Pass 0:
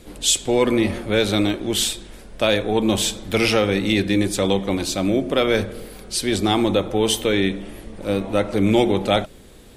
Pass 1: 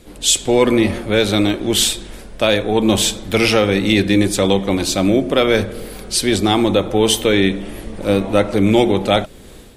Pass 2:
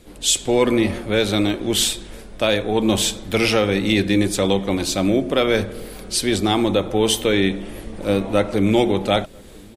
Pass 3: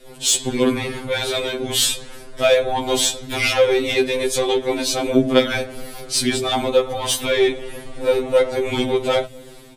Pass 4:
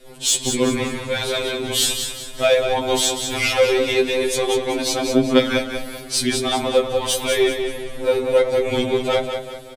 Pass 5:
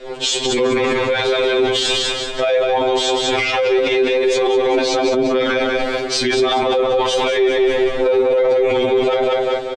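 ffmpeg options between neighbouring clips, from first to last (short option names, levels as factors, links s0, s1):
-af "dynaudnorm=f=100:g=5:m=2.51"
-filter_complex "[0:a]asplit=2[s0][s1];[s1]adelay=991.3,volume=0.0355,highshelf=f=4000:g=-22.3[s2];[s0][s2]amix=inputs=2:normalize=0,volume=0.668"
-af "bandreject=f=60:t=h:w=6,bandreject=f=120:t=h:w=6,acontrast=85,afftfilt=real='re*2.45*eq(mod(b,6),0)':imag='im*2.45*eq(mod(b,6),0)':win_size=2048:overlap=0.75,volume=0.75"
-af "aecho=1:1:192|384|576|768|960:0.447|0.174|0.0679|0.0265|0.0103,volume=0.891"
-filter_complex "[0:a]firequalizer=gain_entry='entry(200,0);entry(380,12);entry(7400,-2);entry(11000,-25)':delay=0.05:min_phase=1,alimiter=limit=0.2:level=0:latency=1:release=17,asplit=2[s0][s1];[s1]adelay=18,volume=0.224[s2];[s0][s2]amix=inputs=2:normalize=0,volume=1.58"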